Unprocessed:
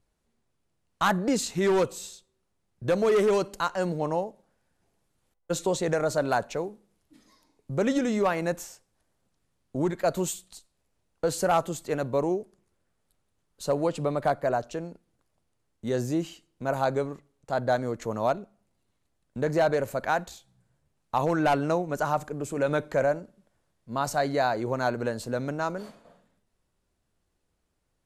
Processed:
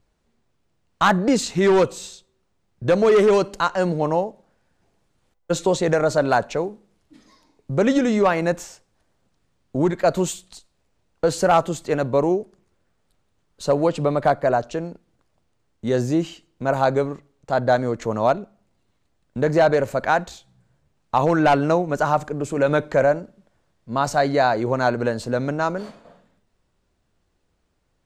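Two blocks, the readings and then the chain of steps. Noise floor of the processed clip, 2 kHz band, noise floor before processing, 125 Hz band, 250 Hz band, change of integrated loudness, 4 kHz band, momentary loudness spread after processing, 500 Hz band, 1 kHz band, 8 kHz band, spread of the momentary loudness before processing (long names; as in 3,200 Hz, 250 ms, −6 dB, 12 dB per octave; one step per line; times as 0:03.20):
−69 dBFS, +7.0 dB, −76 dBFS, +7.0 dB, +7.0 dB, +7.0 dB, +6.0 dB, 12 LU, +7.0 dB, +7.0 dB, +3.0 dB, 12 LU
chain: parametric band 12,000 Hz −12 dB 0.81 octaves
level +7 dB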